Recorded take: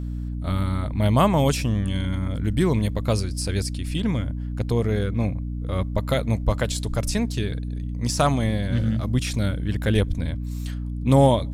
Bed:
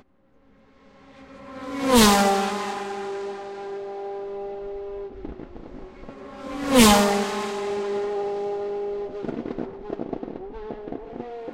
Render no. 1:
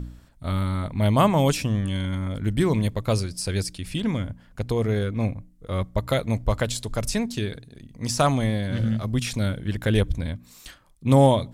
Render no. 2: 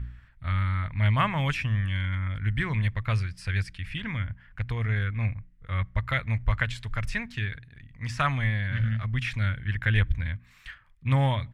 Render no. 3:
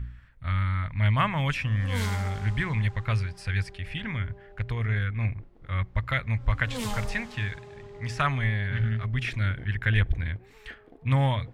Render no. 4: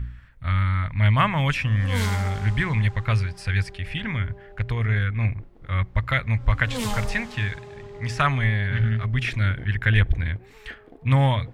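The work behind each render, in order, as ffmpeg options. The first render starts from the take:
ffmpeg -i in.wav -af "bandreject=frequency=60:width_type=h:width=4,bandreject=frequency=120:width_type=h:width=4,bandreject=frequency=180:width_type=h:width=4,bandreject=frequency=240:width_type=h:width=4,bandreject=frequency=300:width_type=h:width=4" out.wav
ffmpeg -i in.wav -af "firequalizer=gain_entry='entry(110,0);entry(180,-10);entry(320,-17);entry(460,-17);entry(1100,-3);entry(1800,8);entry(4100,-11);entry(6800,-18);entry(11000,-21)':delay=0.05:min_phase=1" out.wav
ffmpeg -i in.wav -i bed.wav -filter_complex "[1:a]volume=-19.5dB[link_01];[0:a][link_01]amix=inputs=2:normalize=0" out.wav
ffmpeg -i in.wav -af "volume=4.5dB" out.wav

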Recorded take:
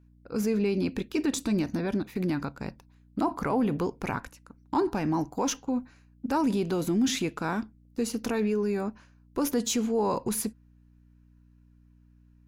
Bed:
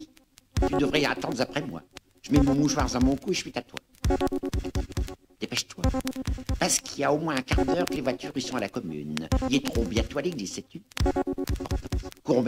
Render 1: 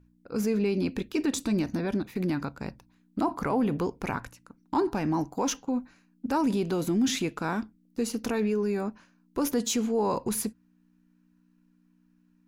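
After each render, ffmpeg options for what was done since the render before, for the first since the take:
ffmpeg -i in.wav -af "bandreject=frequency=60:width_type=h:width=4,bandreject=frequency=120:width_type=h:width=4" out.wav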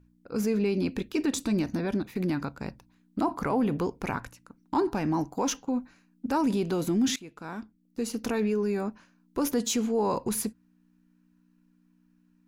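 ffmpeg -i in.wav -filter_complex "[0:a]asplit=2[link_01][link_02];[link_01]atrim=end=7.16,asetpts=PTS-STARTPTS,afade=type=out:start_time=7.156:duration=0.004:curve=hsin:silence=0.1[link_03];[link_02]atrim=start=7.16,asetpts=PTS-STARTPTS,afade=type=in:duration=1.13:silence=0.1[link_04];[link_03][link_04]concat=n=2:v=0:a=1" out.wav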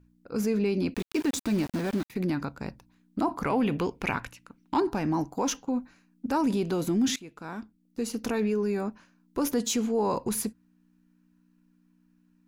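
ffmpeg -i in.wav -filter_complex "[0:a]asettb=1/sr,asplit=3[link_01][link_02][link_03];[link_01]atrim=end=0.944[link_04];[link_02]atrim=start=0.94:end=2.1,asetpts=PTS-STARTPTS,afade=type=in:duration=0.004:curve=qsin,afade=type=out:start_time=1.156:duration=0.004:curve=qsin,aeval=exprs='val(0)*gte(abs(val(0)),0.0168)':channel_layout=same[link_05];[link_03]atrim=start=2.096[link_06];[link_04][link_05]acrossfade=duration=0.004:curve1=hsin:curve2=qsin[link_07];[link_07][link_06]acrossfade=duration=0.004:curve1=qsin:curve2=hsin,asettb=1/sr,asplit=3[link_08][link_09][link_10];[link_08]atrim=end=3.454[link_11];[link_09]atrim=start=3.45:end=4.8,asetpts=PTS-STARTPTS,afade=type=in:duration=0.004:curve=qsin,afade=type=out:start_time=1.346:duration=0.004:curve=qsin,equalizer=frequency=2700:width_type=o:width=1.1:gain=9.5[link_12];[link_10]atrim=start=4.796[link_13];[link_11][link_12]acrossfade=duration=0.004:curve1=hsin:curve2=qsin[link_14];[link_14][link_13]acrossfade=duration=0.004:curve1=qsin:curve2=hsin" out.wav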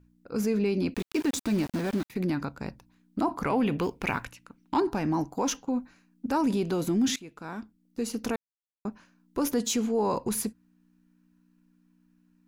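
ffmpeg -i in.wav -filter_complex "[0:a]asettb=1/sr,asplit=3[link_01][link_02][link_03];[link_01]atrim=end=3.824[link_04];[link_02]atrim=start=3.82:end=4.25,asetpts=PTS-STARTPTS,afade=type=in:duration=0.004:curve=qsin,afade=type=out:start_time=0.426:duration=0.004:curve=qsin,acrusher=bits=8:mode=log:mix=0:aa=0.000001[link_05];[link_03]atrim=start=4.246[link_06];[link_04][link_05]acrossfade=duration=0.004:curve1=hsin:curve2=qsin[link_07];[link_07][link_06]acrossfade=duration=0.004:curve1=qsin:curve2=hsin,asplit=3[link_08][link_09][link_10];[link_08]atrim=end=8.36,asetpts=PTS-STARTPTS,afade=type=out:start_time=8.356:duration=0.004:curve=hsin[link_11];[link_09]atrim=start=8.36:end=8.85,asetpts=PTS-STARTPTS,volume=0[link_12];[link_10]atrim=start=8.85,asetpts=PTS-STARTPTS,afade=type=in:duration=0.004:curve=hsin[link_13];[link_11][link_12][link_13]concat=n=3:v=0:a=1" out.wav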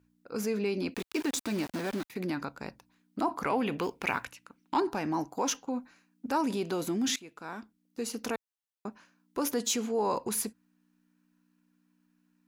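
ffmpeg -i in.wav -af "highpass=70,equalizer=frequency=110:width=0.45:gain=-9.5" out.wav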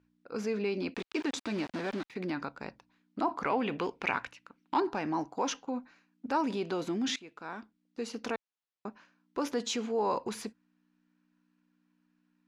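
ffmpeg -i in.wav -af "lowpass=4500,equalizer=frequency=71:width=0.32:gain=-4.5" out.wav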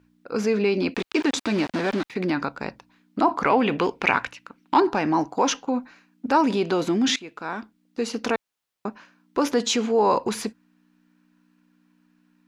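ffmpeg -i in.wav -af "volume=10.5dB" out.wav

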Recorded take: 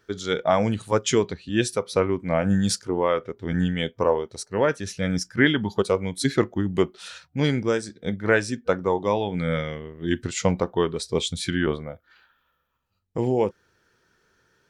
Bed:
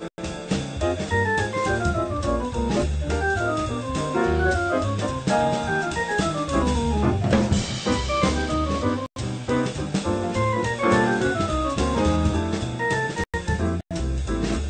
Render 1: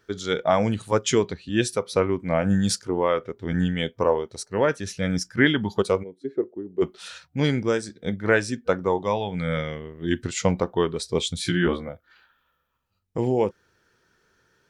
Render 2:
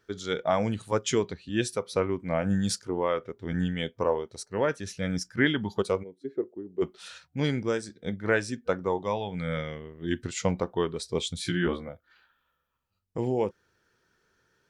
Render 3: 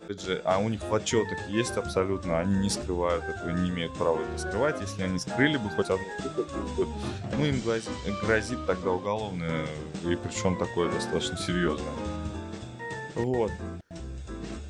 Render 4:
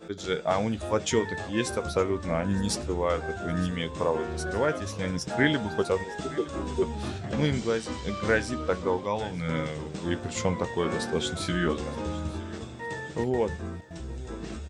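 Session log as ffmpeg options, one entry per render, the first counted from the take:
ffmpeg -i in.wav -filter_complex "[0:a]asplit=3[link_01][link_02][link_03];[link_01]afade=type=out:start_time=6.02:duration=0.02[link_04];[link_02]bandpass=frequency=400:width_type=q:width=4.1,afade=type=in:start_time=6.02:duration=0.02,afade=type=out:start_time=6.81:duration=0.02[link_05];[link_03]afade=type=in:start_time=6.81:duration=0.02[link_06];[link_04][link_05][link_06]amix=inputs=3:normalize=0,asettb=1/sr,asplit=3[link_07][link_08][link_09];[link_07]atrim=end=9.014[link_10];[link_08]atrim=start=9.01:end=9.57,asetpts=PTS-STARTPTS,afade=type=in:duration=0.004:curve=qsin,afade=type=out:start_time=0.556:duration=0.004:curve=qsin,equalizer=frequency=320:width_type=o:width=0.77:gain=-7[link_11];[link_09]atrim=start=9.566[link_12];[link_10][link_11]acrossfade=duration=0.004:curve1=hsin:curve2=qsin[link_13];[link_13][link_12]acrossfade=duration=0.004:curve1=qsin:curve2=hsin,asettb=1/sr,asplit=3[link_14][link_15][link_16];[link_14]atrim=end=11.434[link_17];[link_15]atrim=start=11.43:end=11.89,asetpts=PTS-STARTPTS,afade=type=in:duration=0.004:curve=qsin,afade=type=out:start_time=0.456:duration=0.004:curve=qsin,asplit=2[link_18][link_19];[link_19]adelay=17,volume=-2dB[link_20];[link_18][link_20]amix=inputs=2:normalize=0,atrim=end_sample=20286[link_21];[link_16]atrim=start=11.886[link_22];[link_17][link_21]acrossfade=duration=0.004:curve1=hsin:curve2=qsin[link_23];[link_23][link_22]acrossfade=duration=0.004:curve1=qsin:curve2=hsin" out.wav
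ffmpeg -i in.wav -af "volume=-5dB" out.wav
ffmpeg -i in.wav -i bed.wav -filter_complex "[1:a]volume=-13dB[link_01];[0:a][link_01]amix=inputs=2:normalize=0" out.wav
ffmpeg -i in.wav -filter_complex "[0:a]asplit=2[link_01][link_02];[link_02]adelay=13,volume=-12dB[link_03];[link_01][link_03]amix=inputs=2:normalize=0,aecho=1:1:913|1826|2739:0.112|0.0426|0.0162" out.wav

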